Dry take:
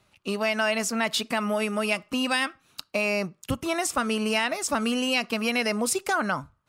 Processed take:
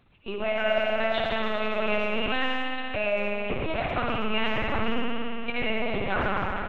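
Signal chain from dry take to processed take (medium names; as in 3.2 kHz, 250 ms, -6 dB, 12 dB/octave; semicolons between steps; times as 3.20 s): 4.99–5.48 s: pitch-class resonator D, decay 0.6 s; hum 50 Hz, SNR 32 dB; spring tank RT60 3.7 s, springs 56 ms, chirp 30 ms, DRR -4 dB; LPC vocoder at 8 kHz pitch kept; speakerphone echo 110 ms, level -15 dB; modulated delay 91 ms, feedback 46%, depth 204 cents, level -16 dB; trim -4.5 dB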